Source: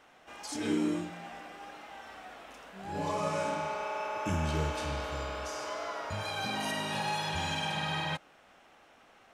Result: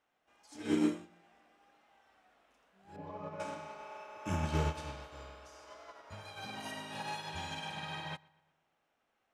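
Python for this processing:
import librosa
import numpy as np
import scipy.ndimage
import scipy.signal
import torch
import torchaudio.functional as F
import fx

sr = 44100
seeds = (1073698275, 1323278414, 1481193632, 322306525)

y = fx.spacing_loss(x, sr, db_at_10k=36, at=(2.96, 3.4))
y = fx.echo_filtered(y, sr, ms=118, feedback_pct=53, hz=4200.0, wet_db=-12)
y = fx.upward_expand(y, sr, threshold_db=-41.0, expansion=2.5)
y = y * 10.0 ** (1.0 / 20.0)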